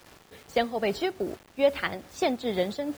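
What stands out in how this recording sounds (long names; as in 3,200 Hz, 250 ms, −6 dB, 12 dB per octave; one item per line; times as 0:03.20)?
a quantiser's noise floor 8 bits, dither none
tremolo triangle 2.4 Hz, depth 55%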